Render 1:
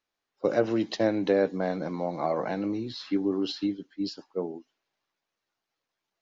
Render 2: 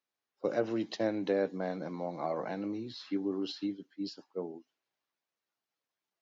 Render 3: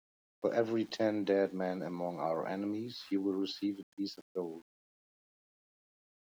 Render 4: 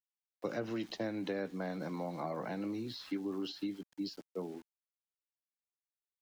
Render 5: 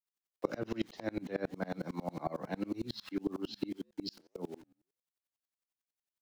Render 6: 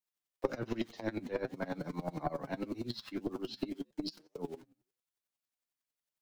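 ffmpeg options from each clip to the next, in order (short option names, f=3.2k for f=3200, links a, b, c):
-af "highpass=99,volume=-6.5dB"
-af "aeval=exprs='val(0)*gte(abs(val(0)),0.0015)':c=same"
-filter_complex "[0:a]acrossover=split=270|960[a][b][c];[a]acompressor=threshold=-43dB:ratio=4[d];[b]acompressor=threshold=-45dB:ratio=4[e];[c]acompressor=threshold=-47dB:ratio=4[f];[d][e][f]amix=inputs=3:normalize=0,volume=3dB"
-af "flanger=delay=6.8:depth=5.8:regen=-86:speed=1.8:shape=sinusoidal,aeval=exprs='val(0)*pow(10,-30*if(lt(mod(-11*n/s,1),2*abs(-11)/1000),1-mod(-11*n/s,1)/(2*abs(-11)/1000),(mod(-11*n/s,1)-2*abs(-11)/1000)/(1-2*abs(-11)/1000))/20)':c=same,volume=13dB"
-af "flanger=delay=6.3:depth=2.6:regen=38:speed=0.48:shape=triangular,aeval=exprs='0.106*(cos(1*acos(clip(val(0)/0.106,-1,1)))-cos(1*PI/2))+0.0119*(cos(4*acos(clip(val(0)/0.106,-1,1)))-cos(4*PI/2))':c=same,volume=4dB"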